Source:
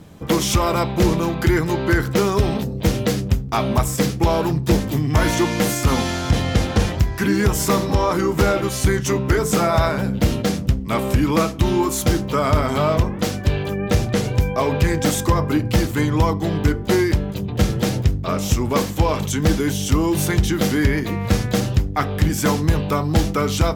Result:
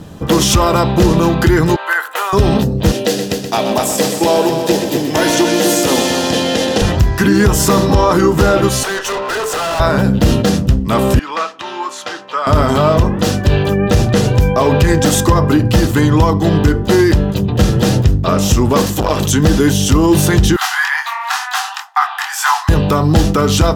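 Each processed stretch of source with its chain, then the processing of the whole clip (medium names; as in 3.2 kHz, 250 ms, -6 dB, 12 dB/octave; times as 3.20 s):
1.76–2.33 s: high-pass 780 Hz 24 dB/octave + peaking EQ 5.3 kHz -14.5 dB 1 oct
2.92–6.82 s: high-pass 330 Hz + peaking EQ 1.2 kHz -9.5 dB 0.72 oct + multi-head delay 126 ms, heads first and second, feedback 45%, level -10 dB
8.83–9.80 s: steep high-pass 410 Hz + peaking EQ 1.1 kHz +11.5 dB 2.9 oct + valve stage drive 27 dB, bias 0.4
11.19–12.47 s: high-pass 1.1 kHz + tape spacing loss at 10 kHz 21 dB
18.86–19.31 s: treble shelf 4.8 kHz +7 dB + transformer saturation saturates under 520 Hz
20.56–22.69 s: peaking EQ 1.2 kHz +8.5 dB 1.8 oct + chorus 2.1 Hz, delay 20 ms, depth 4.6 ms + steep high-pass 750 Hz 96 dB/octave
whole clip: treble shelf 11 kHz -5 dB; band-stop 2.2 kHz, Q 6.7; loudness maximiser +11.5 dB; trim -1.5 dB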